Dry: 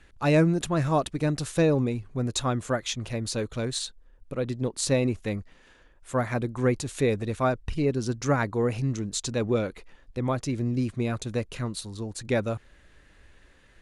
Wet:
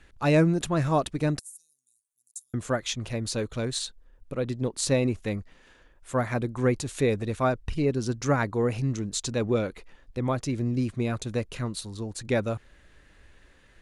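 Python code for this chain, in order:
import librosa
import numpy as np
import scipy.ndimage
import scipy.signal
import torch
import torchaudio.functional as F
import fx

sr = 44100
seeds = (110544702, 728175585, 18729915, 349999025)

y = fx.cheby2_highpass(x, sr, hz=2200.0, order=4, stop_db=70, at=(1.39, 2.54))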